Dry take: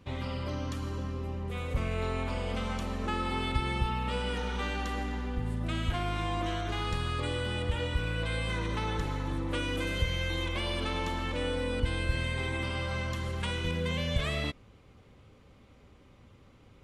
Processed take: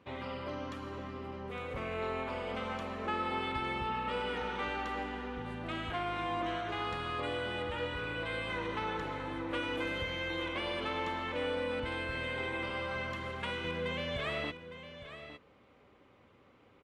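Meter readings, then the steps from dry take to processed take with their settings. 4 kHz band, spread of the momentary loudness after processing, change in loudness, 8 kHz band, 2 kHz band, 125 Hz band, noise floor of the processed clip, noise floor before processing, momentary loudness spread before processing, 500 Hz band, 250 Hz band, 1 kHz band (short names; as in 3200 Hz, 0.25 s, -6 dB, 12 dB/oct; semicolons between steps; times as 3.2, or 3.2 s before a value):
-4.0 dB, 7 LU, -3.5 dB, -12.0 dB, -1.0 dB, -12.0 dB, -63 dBFS, -58 dBFS, 4 LU, -1.0 dB, -4.5 dB, 0.0 dB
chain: HPF 140 Hz 6 dB/oct; tone controls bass -8 dB, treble -14 dB; echo 0.859 s -12 dB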